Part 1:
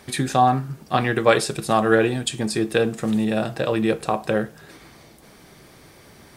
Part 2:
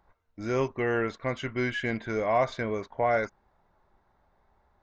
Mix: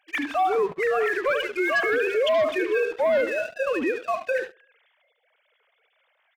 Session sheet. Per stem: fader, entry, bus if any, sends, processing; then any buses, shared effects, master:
−7.5 dB, 0.00 s, no send, echo send −10 dB, three sine waves on the formant tracks; spectral tilt +3.5 dB per octave
+1.5 dB, 0.00 s, no send, echo send −19 dB, three sine waves on the formant tracks; treble cut that deepens with the level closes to 2,800 Hz; multiband upward and downward expander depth 100%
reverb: not used
echo: repeating echo 73 ms, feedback 24%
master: leveller curve on the samples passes 2; brickwall limiter −16.5 dBFS, peak gain reduction 10 dB

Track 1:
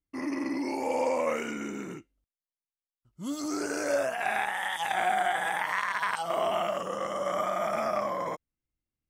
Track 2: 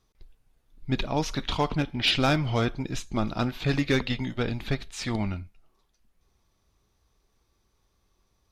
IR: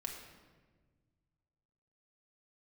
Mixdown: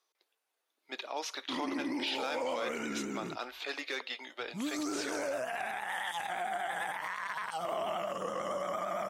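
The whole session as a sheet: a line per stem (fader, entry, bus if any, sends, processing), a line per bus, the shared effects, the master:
−1.0 dB, 1.35 s, no send, downward compressor 3 to 1, threshold −31 dBFS, peak gain reduction 6.5 dB; pitch vibrato 8.8 Hz 66 cents
−4.0 dB, 0.00 s, no send, Bessel high-pass filter 610 Hz, order 6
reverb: not used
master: brickwall limiter −25.5 dBFS, peak gain reduction 9.5 dB

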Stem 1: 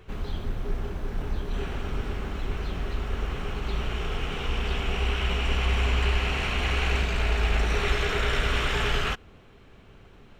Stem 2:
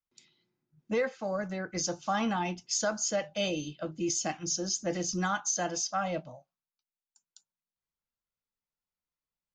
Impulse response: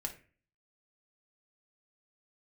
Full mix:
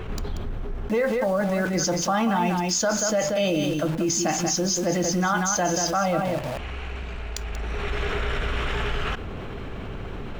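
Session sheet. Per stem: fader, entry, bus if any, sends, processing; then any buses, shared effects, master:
−11.0 dB, 0.00 s, no send, no echo send, automatic ducking −23 dB, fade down 1.75 s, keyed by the second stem
+2.0 dB, 0.00 s, send −6 dB, echo send −5.5 dB, bit reduction 8 bits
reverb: on, RT60 0.40 s, pre-delay 3 ms
echo: single-tap delay 185 ms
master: high-shelf EQ 3,000 Hz −8.5 dB; envelope flattener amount 70%

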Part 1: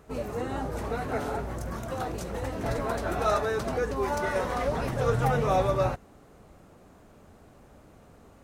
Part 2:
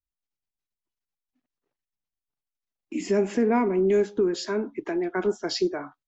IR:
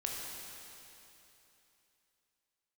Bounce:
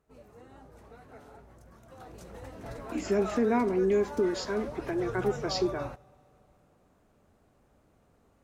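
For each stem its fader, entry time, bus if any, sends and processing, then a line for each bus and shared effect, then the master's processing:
0:01.79 −21 dB → 0:02.25 −12.5 dB, 0.00 s, send −21 dB, no processing
−4.0 dB, 0.00 s, no send, no processing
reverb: on, RT60 3.1 s, pre-delay 15 ms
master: no processing

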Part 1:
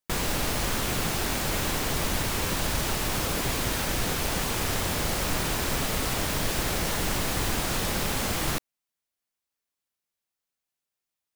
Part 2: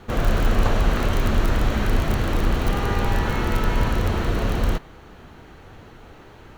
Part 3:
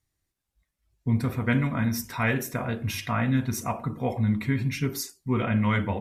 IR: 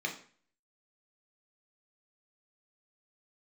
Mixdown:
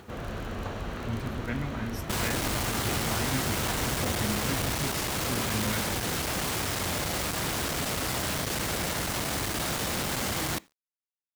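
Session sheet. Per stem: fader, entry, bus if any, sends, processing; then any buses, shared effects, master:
−3.0 dB, 2.00 s, send −22.5 dB, log-companded quantiser 2 bits
−12.0 dB, 0.00 s, no send, upward compression, threshold −30 dBFS
−9.5 dB, 0.00 s, no send, no processing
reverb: on, RT60 0.45 s, pre-delay 3 ms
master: high-pass filter 61 Hz; bit reduction 10 bits; highs frequency-modulated by the lows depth 0.12 ms

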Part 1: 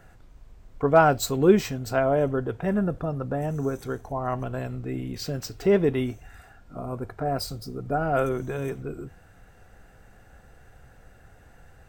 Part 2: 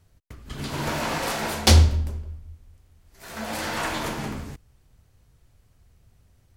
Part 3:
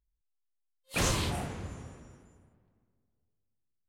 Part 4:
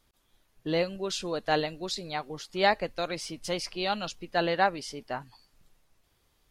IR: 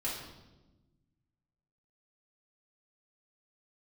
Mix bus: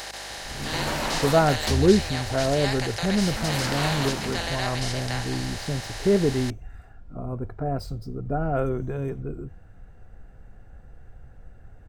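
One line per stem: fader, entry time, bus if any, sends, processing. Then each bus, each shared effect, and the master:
−4.0 dB, 0.40 s, no send, spectral tilt −2.5 dB per octave
−13.5 dB, 0.00 s, no send, automatic gain control gain up to 13.5 dB
−11.0 dB, 1.45 s, no send, no processing
−12.5 dB, 0.00 s, no send, compressor on every frequency bin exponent 0.2; spectral tilt +4 dB per octave; mains hum 50 Hz, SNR 19 dB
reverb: not used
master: no processing

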